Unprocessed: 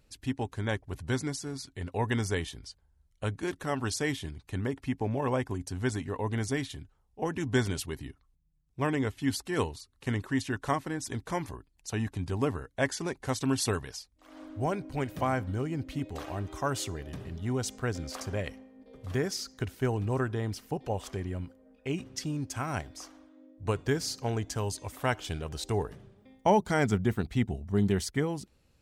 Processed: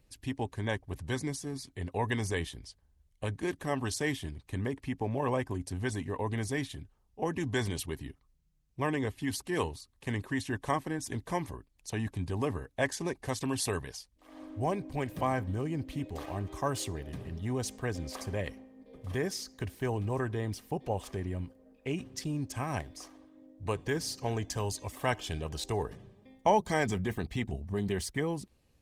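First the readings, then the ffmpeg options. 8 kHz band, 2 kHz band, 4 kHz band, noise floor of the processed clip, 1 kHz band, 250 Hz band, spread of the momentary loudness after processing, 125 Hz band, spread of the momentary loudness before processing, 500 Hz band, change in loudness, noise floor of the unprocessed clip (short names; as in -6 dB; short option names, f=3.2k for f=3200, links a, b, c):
-2.0 dB, -1.5 dB, -2.0 dB, -70 dBFS, -1.0 dB, -3.0 dB, 10 LU, -2.5 dB, 11 LU, -1.5 dB, -2.0 dB, -69 dBFS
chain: -filter_complex "[0:a]acrossover=split=460|2900[a][b][c];[a]alimiter=level_in=3dB:limit=-24dB:level=0:latency=1:release=31,volume=-3dB[d];[d][b][c]amix=inputs=3:normalize=0,asuperstop=centerf=1400:order=8:qfactor=6.3" -ar 48000 -c:a libopus -b:a 24k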